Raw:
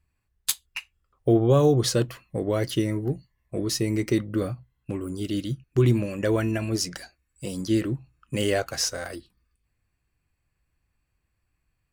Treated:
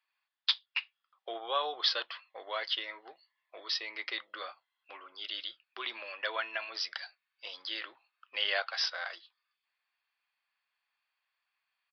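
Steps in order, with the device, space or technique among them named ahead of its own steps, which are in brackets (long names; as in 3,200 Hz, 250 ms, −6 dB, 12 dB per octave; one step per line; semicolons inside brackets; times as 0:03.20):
musical greeting card (downsampling to 11,025 Hz; high-pass filter 830 Hz 24 dB per octave; parametric band 3,400 Hz +8 dB 0.23 octaves)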